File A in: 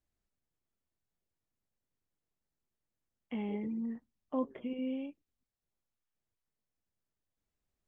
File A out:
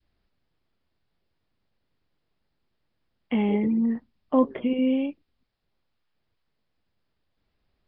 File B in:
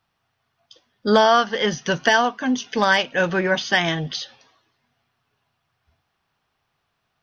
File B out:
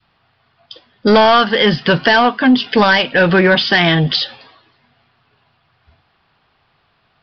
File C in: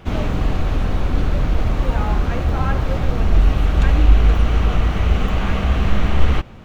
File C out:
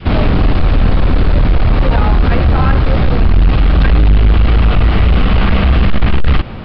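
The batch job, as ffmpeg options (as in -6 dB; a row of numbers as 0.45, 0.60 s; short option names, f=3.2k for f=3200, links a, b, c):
-af "adynamicequalizer=threshold=0.0355:dfrequency=740:dqfactor=0.78:tfrequency=740:tqfactor=0.78:attack=5:release=100:ratio=0.375:range=2.5:mode=cutabove:tftype=bell,aresample=11025,asoftclip=type=tanh:threshold=-15dB,aresample=44100,alimiter=level_in=17dB:limit=-1dB:release=50:level=0:latency=1,volume=-3.5dB"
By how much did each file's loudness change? +13.5, +7.5, +7.0 LU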